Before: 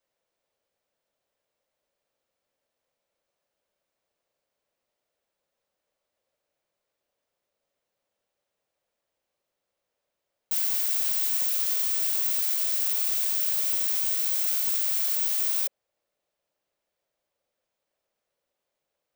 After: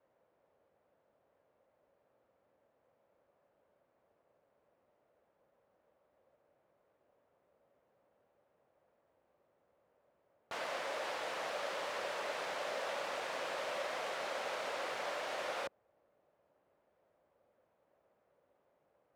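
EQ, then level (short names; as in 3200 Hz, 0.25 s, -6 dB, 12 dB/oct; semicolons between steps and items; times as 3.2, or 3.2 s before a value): HPF 67 Hz; LPF 1200 Hz 12 dB/oct; +12.0 dB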